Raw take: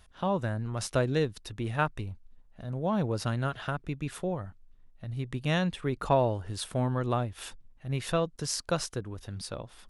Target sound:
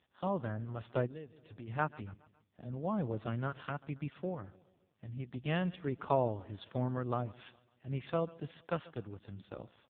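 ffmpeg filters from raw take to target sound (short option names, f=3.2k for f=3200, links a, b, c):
-filter_complex "[0:a]asplit=3[a][b][c];[a]afade=t=out:st=8.43:d=0.02[d];[b]highshelf=f=2k:g=3,afade=t=in:st=8.43:d=0.02,afade=t=out:st=9.41:d=0.02[e];[c]afade=t=in:st=9.41:d=0.02[f];[d][e][f]amix=inputs=3:normalize=0,aecho=1:1:138|276|414|552:0.0891|0.0463|0.0241|0.0125,asplit=3[g][h][i];[g]afade=t=out:st=1.06:d=0.02[j];[h]acompressor=threshold=-37dB:ratio=8,afade=t=in:st=1.06:d=0.02,afade=t=out:st=1.67:d=0.02[k];[i]afade=t=in:st=1.67:d=0.02[l];[j][k][l]amix=inputs=3:normalize=0,volume=-5dB" -ar 8000 -c:a libopencore_amrnb -b:a 5150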